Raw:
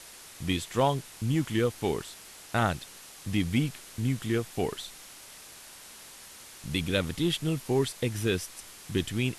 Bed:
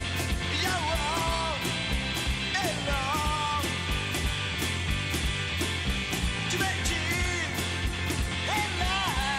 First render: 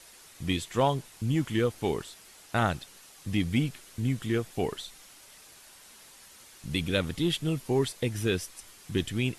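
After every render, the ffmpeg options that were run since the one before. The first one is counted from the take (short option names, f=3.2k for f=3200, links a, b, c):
-af "afftdn=nr=6:nf=-49"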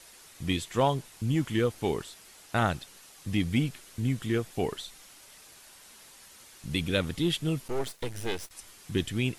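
-filter_complex "[0:a]asettb=1/sr,asplit=3[a][b][c];[a]atrim=end=7.684[d];[b]atrim=start=7.68:end=8.51,asetpts=PTS-STARTPTS,afade=t=in:d=0.004:c=qsin,afade=t=out:st=0.826:d=0.004:c=qsin,aeval=exprs='max(val(0),0)':c=same[e];[c]atrim=start=8.506[f];[d][e]acrossfade=d=0.004:c1=hsin:c2=qsin[g];[g][f]acrossfade=d=0.004:c1=qsin:c2=hsin"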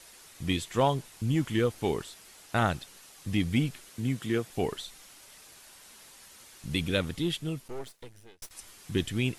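-filter_complex "[0:a]asettb=1/sr,asplit=3[a][b][c];[a]atrim=end=3.894[d];[b]atrim=start=3.89:end=4.5,asetpts=PTS-STARTPTS,afade=t=in:d=0.004:c=qsin,afade=t=out:st=0.606:d=0.004:c=qsin,highpass=120[e];[c]atrim=start=4.496[f];[d][e]acrossfade=d=0.004:c1=hsin:c2=qsin[g];[g][f]acrossfade=d=0.004:c1=qsin:c2=hsin,asplit=2[h][i];[h]atrim=end=8.42,asetpts=PTS-STARTPTS,afade=t=out:st=6.86:d=1.56[j];[i]atrim=start=8.42,asetpts=PTS-STARTPTS,afade=t=in:d=0.004:c=hsin[k];[j][k]concat=n=2:v=0:a=1"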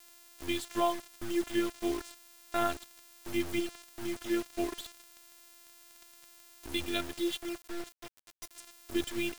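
-af "afftfilt=real='hypot(re,im)*cos(PI*b)':imag='0':win_size=512:overlap=0.75,acrusher=bits=6:mix=0:aa=0.000001"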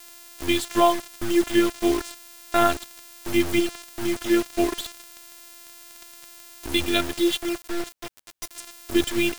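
-af "volume=11dB"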